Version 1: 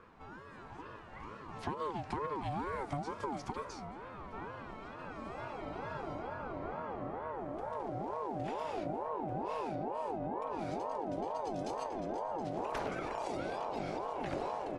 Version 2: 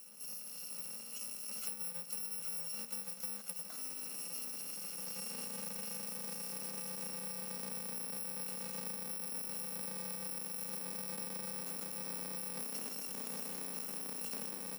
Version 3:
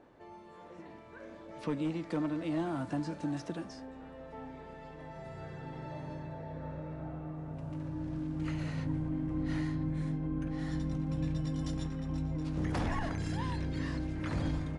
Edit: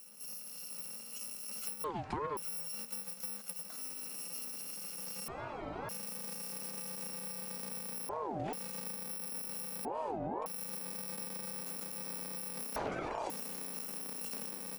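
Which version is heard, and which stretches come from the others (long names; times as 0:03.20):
2
0:01.84–0:02.37: punch in from 1
0:05.28–0:05.89: punch in from 1
0:08.09–0:08.53: punch in from 1
0:09.85–0:10.46: punch in from 1
0:12.76–0:13.30: punch in from 1
not used: 3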